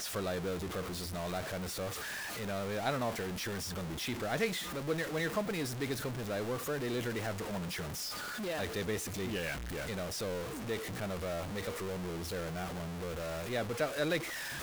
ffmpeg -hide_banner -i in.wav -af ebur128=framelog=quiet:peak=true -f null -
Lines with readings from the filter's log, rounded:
Integrated loudness:
  I:         -36.7 LUFS
  Threshold: -46.7 LUFS
Loudness range:
  LRA:         2.8 LU
  Threshold: -56.7 LUFS
  LRA low:   -38.2 LUFS
  LRA high:  -35.4 LUFS
True peak:
  Peak:      -20.0 dBFS